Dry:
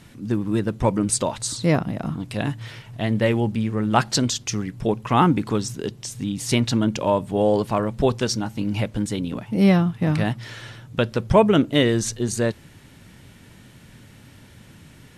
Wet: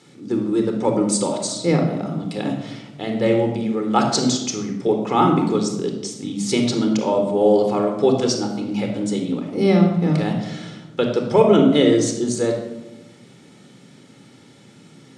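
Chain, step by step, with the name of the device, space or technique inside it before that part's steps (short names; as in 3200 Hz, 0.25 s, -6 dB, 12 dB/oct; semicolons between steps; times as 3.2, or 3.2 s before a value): television speaker (speaker cabinet 180–8700 Hz, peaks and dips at 970 Hz -5 dB, 1700 Hz -8 dB, 2700 Hz -6 dB); shoebox room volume 3900 m³, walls furnished, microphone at 4.1 m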